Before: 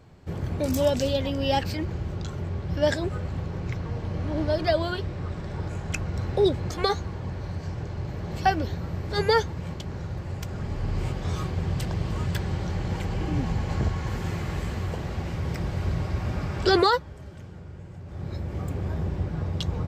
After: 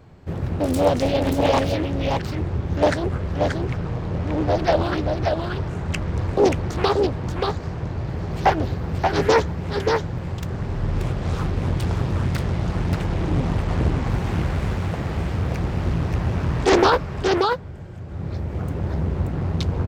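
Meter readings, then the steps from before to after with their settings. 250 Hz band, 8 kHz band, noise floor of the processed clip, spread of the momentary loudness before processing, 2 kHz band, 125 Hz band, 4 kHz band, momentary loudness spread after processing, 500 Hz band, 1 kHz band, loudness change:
+6.0 dB, +4.0 dB, -31 dBFS, 10 LU, +4.5 dB, +5.0 dB, +1.5 dB, 9 LU, +5.5 dB, +6.0 dB, +5.0 dB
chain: peaking EQ 6.7 kHz -4.5 dB 2.3 oct; on a send: delay 581 ms -4 dB; on the sum: loudspeaker Doppler distortion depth 0.97 ms; trim +4.5 dB

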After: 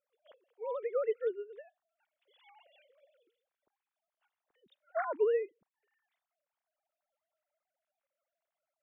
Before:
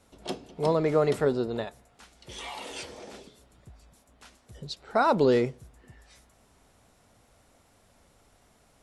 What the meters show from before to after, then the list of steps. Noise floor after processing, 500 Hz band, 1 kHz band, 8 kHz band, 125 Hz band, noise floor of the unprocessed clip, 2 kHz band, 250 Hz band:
under -85 dBFS, -8.0 dB, -13.5 dB, under -30 dB, under -40 dB, -63 dBFS, -11.0 dB, -25.0 dB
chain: formants replaced by sine waves; upward expansion 1.5:1, over -40 dBFS; trim -7.5 dB

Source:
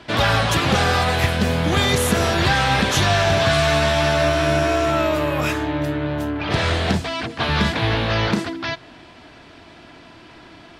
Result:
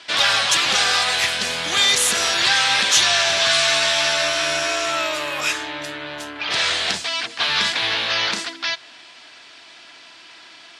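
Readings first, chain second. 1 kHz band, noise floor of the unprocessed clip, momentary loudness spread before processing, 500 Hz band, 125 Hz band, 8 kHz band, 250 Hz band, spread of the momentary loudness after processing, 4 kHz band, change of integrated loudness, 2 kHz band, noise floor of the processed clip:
-3.5 dB, -45 dBFS, 7 LU, -7.5 dB, -21.5 dB, +8.5 dB, -14.5 dB, 11 LU, +7.0 dB, +1.5 dB, +2.0 dB, -45 dBFS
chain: frequency weighting ITU-R 468; trim -3 dB

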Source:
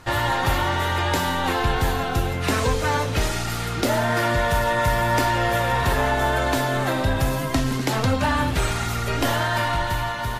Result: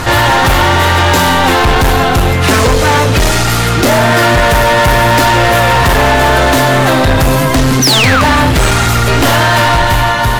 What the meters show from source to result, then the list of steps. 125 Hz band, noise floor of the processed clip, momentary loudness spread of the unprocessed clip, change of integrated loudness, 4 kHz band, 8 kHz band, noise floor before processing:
+13.0 dB, -11 dBFS, 3 LU, +13.5 dB, +15.5 dB, +15.5 dB, -27 dBFS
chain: painted sound fall, 7.82–8.22 s, 1.1–6.3 kHz -23 dBFS; overload inside the chain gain 22.5 dB; loudness maximiser +33.5 dB; trim -5 dB

